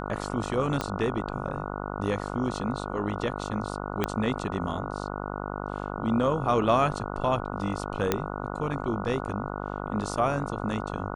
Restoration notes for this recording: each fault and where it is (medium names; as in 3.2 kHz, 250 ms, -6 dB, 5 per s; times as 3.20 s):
buzz 50 Hz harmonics 29 -34 dBFS
0.81 s: pop -13 dBFS
4.04 s: pop -11 dBFS
8.12 s: pop -8 dBFS